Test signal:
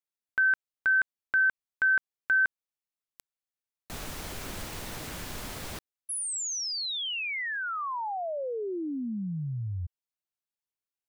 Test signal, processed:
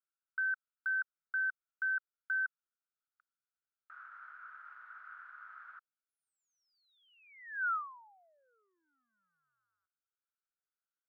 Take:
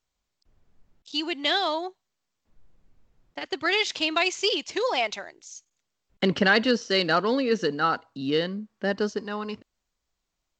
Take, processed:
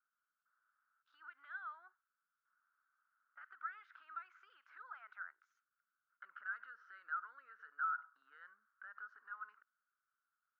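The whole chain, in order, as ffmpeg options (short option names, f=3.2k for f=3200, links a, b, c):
-af "acompressor=threshold=-38dB:ratio=5:attack=0.16:release=76:knee=1:detection=peak,asuperpass=centerf=1400:order=4:qfactor=5,volume=7.5dB"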